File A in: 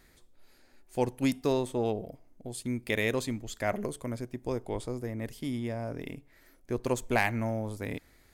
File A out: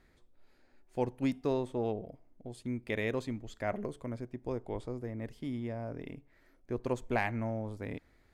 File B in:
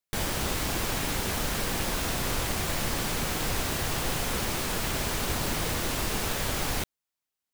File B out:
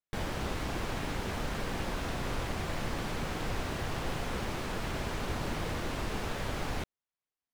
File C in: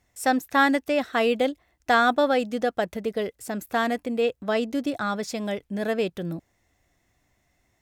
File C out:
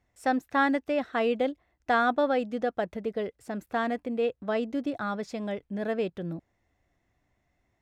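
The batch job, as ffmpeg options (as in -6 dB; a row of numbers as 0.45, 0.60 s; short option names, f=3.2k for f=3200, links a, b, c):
-af "aemphasis=mode=reproduction:type=75kf,volume=-3.5dB"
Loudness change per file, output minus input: -4.0, -7.0, -4.5 LU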